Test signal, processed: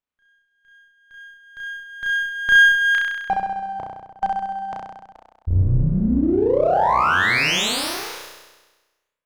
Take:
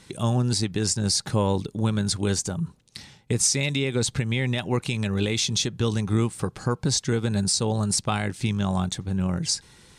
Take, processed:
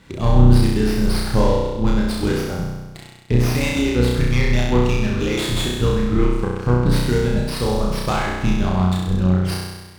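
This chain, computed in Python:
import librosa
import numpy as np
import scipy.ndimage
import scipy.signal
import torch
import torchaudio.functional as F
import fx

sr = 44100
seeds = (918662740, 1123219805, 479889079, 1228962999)

y = fx.octave_divider(x, sr, octaves=2, level_db=-2.0)
y = fx.dereverb_blind(y, sr, rt60_s=1.6)
y = fx.air_absorb(y, sr, metres=130.0)
y = fx.room_flutter(y, sr, wall_m=5.6, rt60_s=1.2)
y = fx.running_max(y, sr, window=5)
y = y * 10.0 ** (3.5 / 20.0)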